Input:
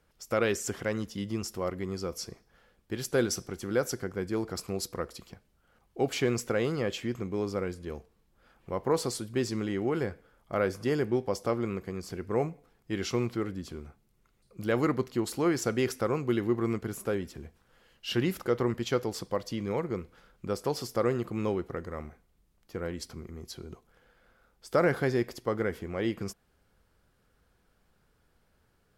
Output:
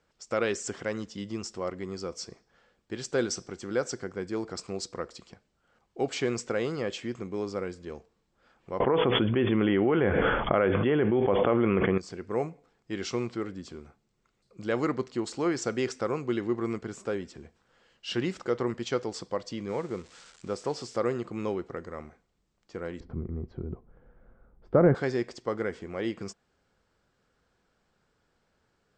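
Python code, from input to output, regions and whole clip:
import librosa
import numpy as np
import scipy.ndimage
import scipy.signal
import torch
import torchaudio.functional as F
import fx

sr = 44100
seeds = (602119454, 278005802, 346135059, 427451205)

y = fx.chain(x, sr, fx.brickwall_lowpass(high_hz=3500.0),
    fx.env_flatten(amount_pct=100), at=(8.8, 11.98))
y = fx.chain(y, sr, fx.crossing_spikes(level_db=-33.0),
    fx.high_shelf(hz=3700.0, db=-7.0), at=(19.69, 20.98))
y = fx.chain(y, sr, fx.lowpass(hz=1900.0, slope=12),
    fx.tilt_eq(slope=-4.5), at=(23.0, 24.95))
y = scipy.signal.sosfilt(scipy.signal.cheby1(5, 1.0, 8000.0, 'lowpass', fs=sr, output='sos'), y)
y = fx.low_shelf(y, sr, hz=110.0, db=-10.5)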